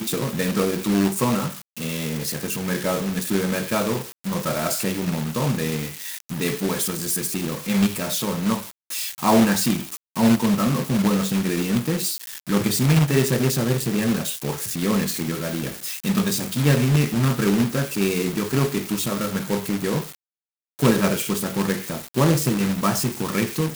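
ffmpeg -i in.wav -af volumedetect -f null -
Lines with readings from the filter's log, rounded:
mean_volume: -22.4 dB
max_volume: -2.9 dB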